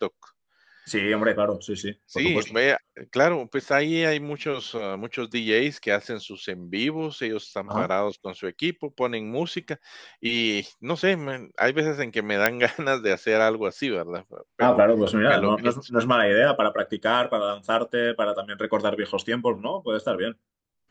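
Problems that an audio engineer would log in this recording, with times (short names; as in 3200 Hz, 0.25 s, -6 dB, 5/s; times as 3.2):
12.46 pop -4 dBFS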